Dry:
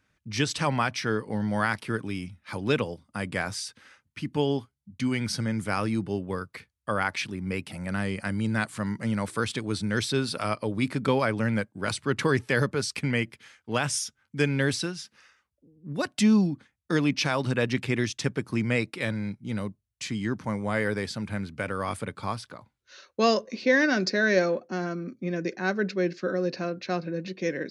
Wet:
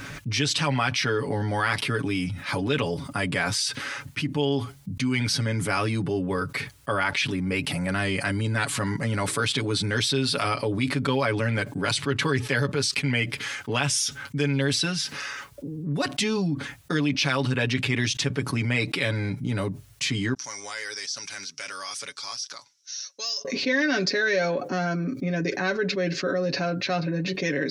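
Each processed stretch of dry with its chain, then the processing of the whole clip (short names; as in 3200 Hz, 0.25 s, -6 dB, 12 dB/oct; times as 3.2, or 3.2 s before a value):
20.34–23.45 band-pass 5700 Hz, Q 8.8 + de-esser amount 95%
whole clip: dynamic EQ 3300 Hz, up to +6 dB, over -43 dBFS, Q 1; comb 7.1 ms, depth 75%; fast leveller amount 70%; gain -7 dB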